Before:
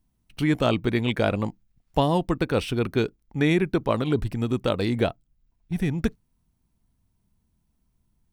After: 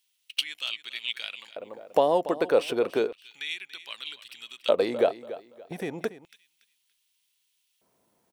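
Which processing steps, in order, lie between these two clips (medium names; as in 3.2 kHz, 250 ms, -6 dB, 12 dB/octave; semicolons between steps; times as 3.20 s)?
bass shelf 430 Hz +7.5 dB; compression 4:1, threshold -30 dBFS, peak gain reduction 15.5 dB; feedback delay 285 ms, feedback 29%, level -15 dB; LFO high-pass square 0.32 Hz 530–3000 Hz; trim +8.5 dB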